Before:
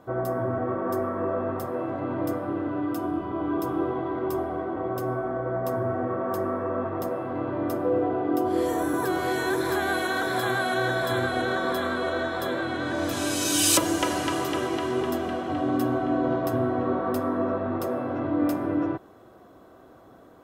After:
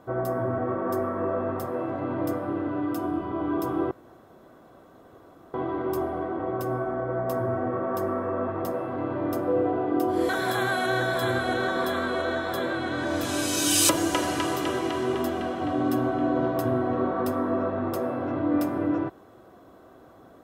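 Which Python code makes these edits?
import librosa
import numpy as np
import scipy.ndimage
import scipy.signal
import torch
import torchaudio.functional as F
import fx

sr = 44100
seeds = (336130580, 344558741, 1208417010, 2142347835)

y = fx.edit(x, sr, fx.insert_room_tone(at_s=3.91, length_s=1.63),
    fx.cut(start_s=8.66, length_s=1.51), tone=tone)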